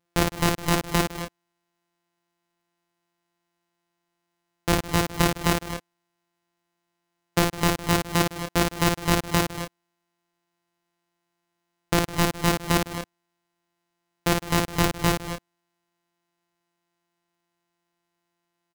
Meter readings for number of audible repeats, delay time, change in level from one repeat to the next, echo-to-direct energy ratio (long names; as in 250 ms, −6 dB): 4, 55 ms, repeats not evenly spaced, −3.5 dB